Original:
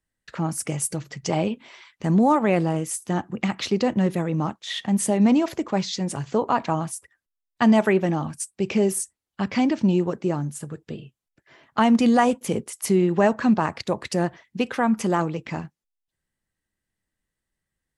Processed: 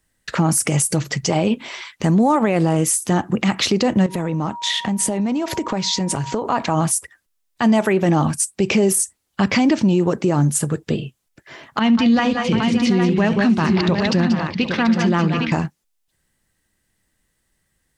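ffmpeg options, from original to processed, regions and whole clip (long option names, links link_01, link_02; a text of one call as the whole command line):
ffmpeg -i in.wav -filter_complex "[0:a]asettb=1/sr,asplit=3[link_01][link_02][link_03];[link_01]atrim=end=4.064[link_04];[link_02]atrim=start=4.06:end=6.45,asetpts=PTS-STARTPTS,afade=type=in:duration=0.004:curve=qsin,afade=type=out:start_time=2.386:duration=0.004:curve=qsin,highshelf=frequency=9100:gain=-5,aeval=exprs='val(0)+0.00794*sin(2*PI*950*n/s)':channel_layout=same,acompressor=threshold=-31dB:ratio=10:attack=3.2:release=140:knee=1:detection=peak[link_05];[link_03]atrim=start=6.446[link_06];[link_04][link_05]acrossfade=duration=0.004:curve1=hsin:curve2=qsin[link_07];[link_07][link_06]acrossfade=duration=0.004:curve1=qsin:curve2=hsin,asettb=1/sr,asplit=3[link_08][link_09][link_10];[link_08]atrim=end=11.794[link_11];[link_09]atrim=start=11.79:end=15.52,asetpts=PTS-STARTPTS,afade=type=in:duration=0.004:curve=qsin,afade=type=out:start_time=3.726:duration=0.004:curve=qsin,lowpass=frequency=4300:width=0.5412,lowpass=frequency=4300:width=1.3066,equalizer=frequency=670:width=0.5:gain=-13,aecho=1:1:68|182|192|591|734|810:0.126|0.299|0.282|0.141|0.251|0.422,atrim=end_sample=164493[link_12];[link_10]atrim=start=15.516[link_13];[link_11][link_12]acrossfade=duration=0.004:curve1=hsin:curve2=qsin[link_14];[link_14][link_13]acrossfade=duration=0.004:curve1=qsin:curve2=hsin,equalizer=frequency=9800:width_type=o:width=2:gain=4,acompressor=threshold=-23dB:ratio=4,alimiter=level_in=20.5dB:limit=-1dB:release=50:level=0:latency=1,volume=-7.5dB" out.wav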